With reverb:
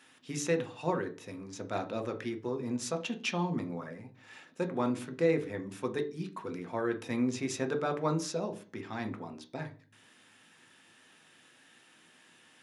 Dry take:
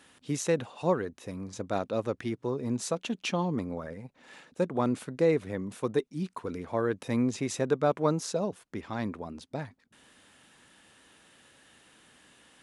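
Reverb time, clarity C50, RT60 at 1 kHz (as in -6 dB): 0.40 s, 15.0 dB, 0.40 s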